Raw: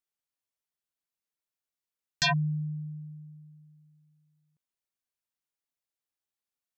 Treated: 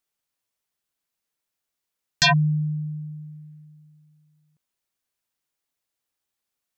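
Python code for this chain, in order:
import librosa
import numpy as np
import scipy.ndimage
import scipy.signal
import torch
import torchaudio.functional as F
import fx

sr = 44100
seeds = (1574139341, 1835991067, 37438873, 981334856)

y = fx.peak_eq(x, sr, hz=1900.0, db=8.0, octaves=0.77, at=(3.22, 3.65))
y = y * librosa.db_to_amplitude(8.0)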